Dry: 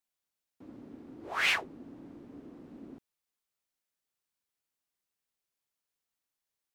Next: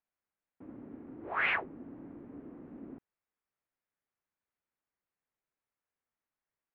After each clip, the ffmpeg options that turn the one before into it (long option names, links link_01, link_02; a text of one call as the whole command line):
ffmpeg -i in.wav -af "lowpass=frequency=2200:width=0.5412,lowpass=frequency=2200:width=1.3066,volume=1dB" out.wav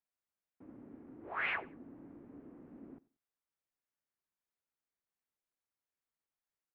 ffmpeg -i in.wav -af "aecho=1:1:91|182:0.0794|0.0207,volume=-5.5dB" out.wav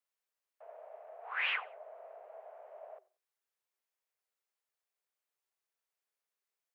ffmpeg -i in.wav -af "afreqshift=370,volume=2dB" out.wav